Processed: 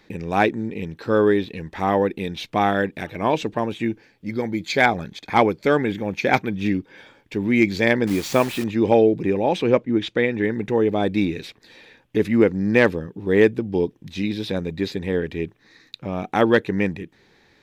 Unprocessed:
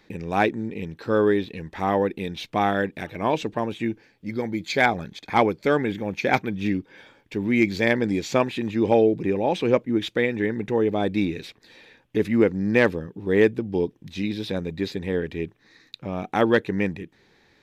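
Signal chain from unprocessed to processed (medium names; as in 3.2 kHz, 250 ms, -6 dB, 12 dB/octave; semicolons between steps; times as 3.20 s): 8.07–8.64 s: word length cut 6-bit, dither none; 9.62–10.44 s: distance through air 62 m; trim +2.5 dB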